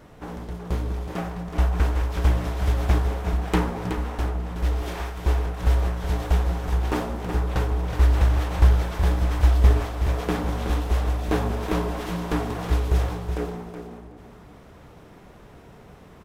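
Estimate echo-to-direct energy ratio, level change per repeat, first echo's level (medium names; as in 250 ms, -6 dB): -8.0 dB, -15.5 dB, -8.0 dB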